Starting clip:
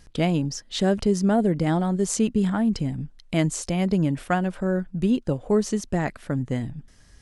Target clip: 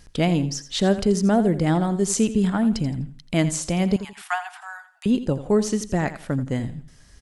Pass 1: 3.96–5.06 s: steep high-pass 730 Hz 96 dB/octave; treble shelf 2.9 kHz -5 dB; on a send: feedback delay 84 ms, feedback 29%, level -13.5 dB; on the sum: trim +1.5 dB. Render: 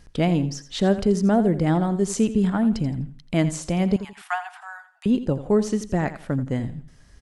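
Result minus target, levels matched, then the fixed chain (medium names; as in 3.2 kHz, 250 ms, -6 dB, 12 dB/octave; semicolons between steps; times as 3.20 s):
8 kHz band -5.5 dB
3.96–5.06 s: steep high-pass 730 Hz 96 dB/octave; treble shelf 2.9 kHz +2 dB; on a send: feedback delay 84 ms, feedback 29%, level -13.5 dB; on the sum: trim +1.5 dB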